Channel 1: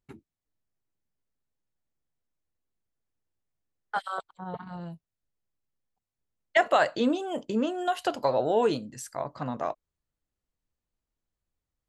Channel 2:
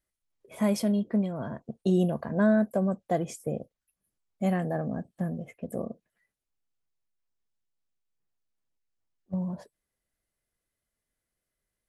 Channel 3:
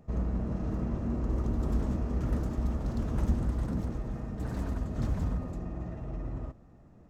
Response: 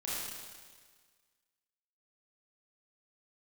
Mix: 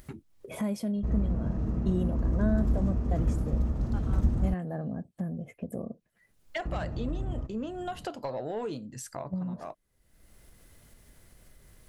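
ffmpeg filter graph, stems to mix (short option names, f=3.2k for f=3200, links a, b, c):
-filter_complex "[0:a]asoftclip=type=tanh:threshold=-17.5dB,volume=-13.5dB[a];[1:a]volume=-10.5dB,asplit=2[b][c];[2:a]adelay=950,volume=-4.5dB,asplit=3[d][e][f];[d]atrim=end=4.54,asetpts=PTS-STARTPTS,afade=t=out:st=4.536:d=0.004:c=hsin[g];[e]atrim=start=4.54:end=6.65,asetpts=PTS-STARTPTS,volume=0[h];[f]atrim=start=6.65,asetpts=PTS-STARTPTS,afade=t=in:d=0.004:c=hsin[i];[g][h][i]concat=n=3:v=0:a=1[j];[c]apad=whole_len=524179[k];[a][k]sidechaincompress=threshold=-47dB:ratio=3:attack=16:release=1070[l];[l][b][j]amix=inputs=3:normalize=0,lowshelf=f=290:g=8,acompressor=mode=upward:threshold=-28dB:ratio=2.5"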